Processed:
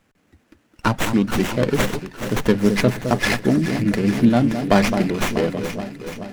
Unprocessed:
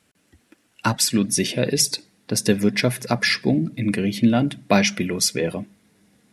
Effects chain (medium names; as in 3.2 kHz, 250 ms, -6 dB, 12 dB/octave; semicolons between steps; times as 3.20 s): echo whose repeats swap between lows and highs 214 ms, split 1.4 kHz, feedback 78%, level -8 dB; sliding maximum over 9 samples; trim +2 dB